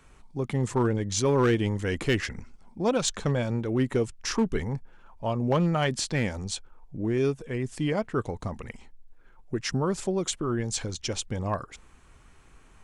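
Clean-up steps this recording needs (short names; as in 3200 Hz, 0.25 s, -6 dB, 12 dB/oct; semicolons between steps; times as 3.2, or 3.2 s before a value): clip repair -16.5 dBFS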